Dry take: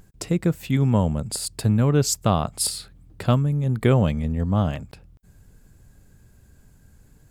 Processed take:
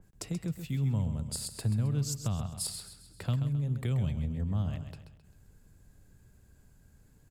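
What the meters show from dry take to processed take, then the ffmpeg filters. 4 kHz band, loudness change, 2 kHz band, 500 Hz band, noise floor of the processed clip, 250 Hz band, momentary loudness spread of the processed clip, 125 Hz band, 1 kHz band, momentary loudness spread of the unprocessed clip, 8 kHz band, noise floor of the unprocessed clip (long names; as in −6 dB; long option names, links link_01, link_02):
−11.0 dB, −10.5 dB, −14.5 dB, −19.5 dB, −61 dBFS, −13.0 dB, 10 LU, −8.5 dB, −20.0 dB, 8 LU, −11.0 dB, −54 dBFS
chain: -filter_complex "[0:a]acrossover=split=170|3000[link_01][link_02][link_03];[link_02]acompressor=threshold=-35dB:ratio=5[link_04];[link_01][link_04][link_03]amix=inputs=3:normalize=0,aecho=1:1:132|264|396|528:0.355|0.142|0.0568|0.0227,adynamicequalizer=threshold=0.00447:dfrequency=2800:dqfactor=0.7:tfrequency=2800:tqfactor=0.7:attack=5:release=100:ratio=0.375:range=3.5:mode=cutabove:tftype=highshelf,volume=-7.5dB"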